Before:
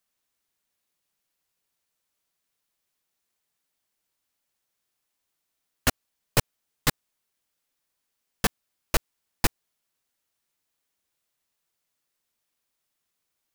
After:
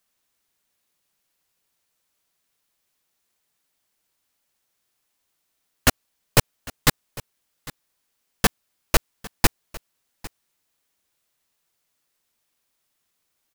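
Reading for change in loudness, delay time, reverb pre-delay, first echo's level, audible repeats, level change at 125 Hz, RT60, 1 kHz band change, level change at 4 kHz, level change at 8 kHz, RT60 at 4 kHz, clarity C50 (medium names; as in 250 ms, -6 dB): +5.5 dB, 802 ms, no reverb, -20.0 dB, 1, +5.5 dB, no reverb, +5.5 dB, +5.5 dB, +5.5 dB, no reverb, no reverb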